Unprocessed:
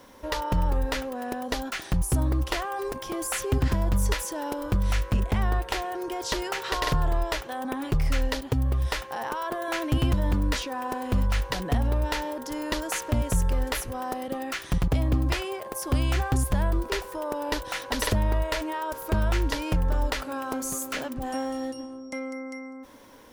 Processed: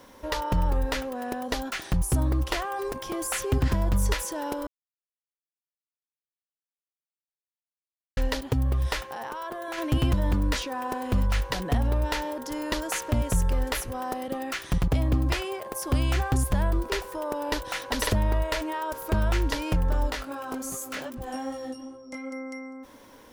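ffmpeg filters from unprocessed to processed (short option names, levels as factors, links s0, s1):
-filter_complex "[0:a]asplit=3[s0][s1][s2];[s0]afade=t=out:st=9.06:d=0.02[s3];[s1]acompressor=threshold=0.0224:ratio=2.5:attack=3.2:release=140:knee=1:detection=peak,afade=t=in:st=9.06:d=0.02,afade=t=out:st=9.77:d=0.02[s4];[s2]afade=t=in:st=9.77:d=0.02[s5];[s3][s4][s5]amix=inputs=3:normalize=0,asplit=3[s6][s7][s8];[s6]afade=t=out:st=20.1:d=0.02[s9];[s7]flanger=delay=17:depth=3:speed=2.5,afade=t=in:st=20.1:d=0.02,afade=t=out:st=22.31:d=0.02[s10];[s8]afade=t=in:st=22.31:d=0.02[s11];[s9][s10][s11]amix=inputs=3:normalize=0,asplit=3[s12][s13][s14];[s12]atrim=end=4.67,asetpts=PTS-STARTPTS,afade=t=out:st=4.666:d=0.004:c=hsin[s15];[s13]atrim=start=4.67:end=8.17,asetpts=PTS-STARTPTS,volume=0[s16];[s14]atrim=start=8.17,asetpts=PTS-STARTPTS,afade=t=in:d=0.004:c=hsin[s17];[s15][s16][s17]concat=n=3:v=0:a=1"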